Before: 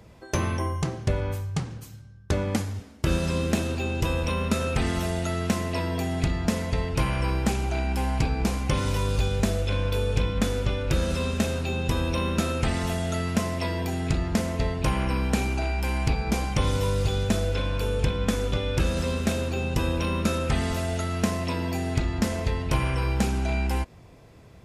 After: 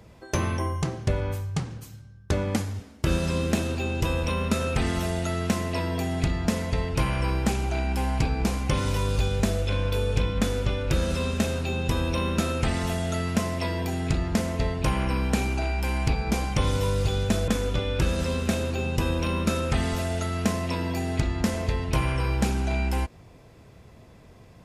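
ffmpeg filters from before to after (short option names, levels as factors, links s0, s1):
-filter_complex "[0:a]asplit=2[s0][s1];[s0]atrim=end=17.482[s2];[s1]atrim=start=18.258[s3];[s2][s3]acrossfade=d=0.004:c1=hsin:c2=hsin"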